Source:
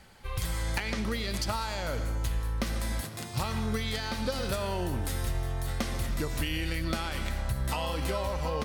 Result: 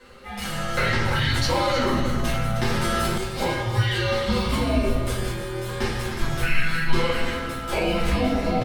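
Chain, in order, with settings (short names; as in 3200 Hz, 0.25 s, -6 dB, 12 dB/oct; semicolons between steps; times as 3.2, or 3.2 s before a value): HPF 320 Hz 12 dB/oct; high shelf 5300 Hz -10.5 dB; notches 60/120/180/240/300/360/420/480/540 Hz; comb 7.2 ms, depth 42%; frequency shift -320 Hz; echo 0.31 s -11 dB; shoebox room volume 87 m³, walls mixed, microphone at 2.1 m; 0.83–3.18 fast leveller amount 70%; gain +2 dB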